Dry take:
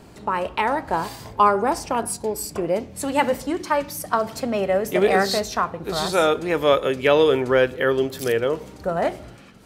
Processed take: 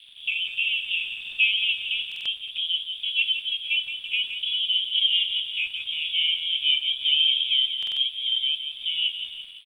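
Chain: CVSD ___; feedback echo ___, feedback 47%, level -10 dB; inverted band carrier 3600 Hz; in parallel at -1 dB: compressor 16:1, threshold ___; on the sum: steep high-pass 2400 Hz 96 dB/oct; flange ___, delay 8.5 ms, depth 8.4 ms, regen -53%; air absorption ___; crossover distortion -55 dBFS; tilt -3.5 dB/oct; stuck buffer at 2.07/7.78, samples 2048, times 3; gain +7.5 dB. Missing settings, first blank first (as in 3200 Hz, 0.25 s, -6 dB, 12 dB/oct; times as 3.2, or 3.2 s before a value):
32 kbps, 0.169 s, -31 dBFS, 0.37 Hz, 130 m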